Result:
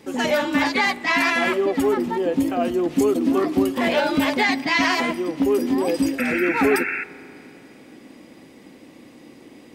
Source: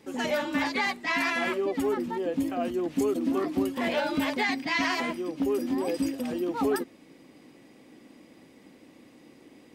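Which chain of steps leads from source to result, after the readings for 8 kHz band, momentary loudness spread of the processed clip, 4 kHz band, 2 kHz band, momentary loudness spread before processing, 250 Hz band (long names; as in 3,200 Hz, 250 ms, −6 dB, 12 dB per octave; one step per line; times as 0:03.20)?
+7.5 dB, 4 LU, +7.5 dB, +8.5 dB, 4 LU, +7.5 dB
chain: sound drawn into the spectrogram noise, 0:06.18–0:07.04, 1,300–2,700 Hz −34 dBFS
spring reverb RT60 3 s, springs 34 ms, chirp 35 ms, DRR 18 dB
level +7.5 dB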